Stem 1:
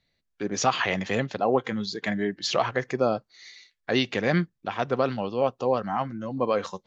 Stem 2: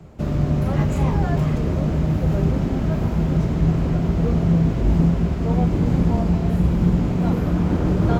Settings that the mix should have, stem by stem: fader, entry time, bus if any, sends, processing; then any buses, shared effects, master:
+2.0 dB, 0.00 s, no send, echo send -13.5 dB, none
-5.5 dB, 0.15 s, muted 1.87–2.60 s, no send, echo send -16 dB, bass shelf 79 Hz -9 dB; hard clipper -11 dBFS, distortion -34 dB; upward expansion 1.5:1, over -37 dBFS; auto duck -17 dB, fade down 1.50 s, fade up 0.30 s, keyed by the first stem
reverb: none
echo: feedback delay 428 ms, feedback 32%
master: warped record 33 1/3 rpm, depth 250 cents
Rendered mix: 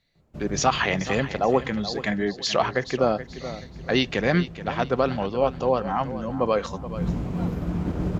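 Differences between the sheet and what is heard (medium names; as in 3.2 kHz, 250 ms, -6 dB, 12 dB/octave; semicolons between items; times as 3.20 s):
stem 2: missing bass shelf 79 Hz -9 dB; master: missing warped record 33 1/3 rpm, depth 250 cents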